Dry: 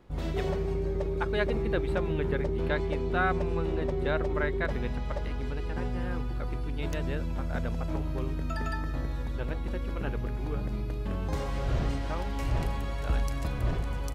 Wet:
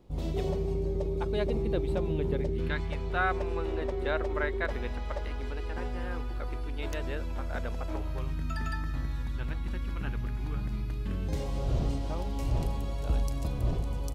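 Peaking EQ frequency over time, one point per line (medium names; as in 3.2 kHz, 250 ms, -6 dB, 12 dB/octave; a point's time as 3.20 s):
peaking EQ -12 dB 1.2 oct
2.36 s 1.6 kHz
2.86 s 410 Hz
3.43 s 150 Hz
7.98 s 150 Hz
8.40 s 510 Hz
10.91 s 510 Hz
11.56 s 1.7 kHz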